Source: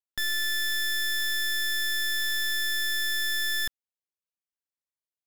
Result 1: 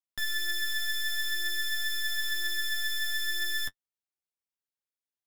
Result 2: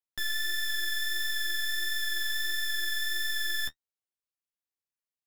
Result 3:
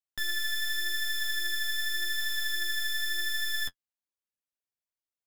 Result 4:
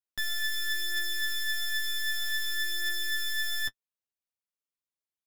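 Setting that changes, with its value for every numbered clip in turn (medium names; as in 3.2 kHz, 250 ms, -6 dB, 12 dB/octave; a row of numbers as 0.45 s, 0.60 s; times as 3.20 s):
flange, rate: 0.51 Hz, 1.5 Hz, 0.86 Hz, 0.26 Hz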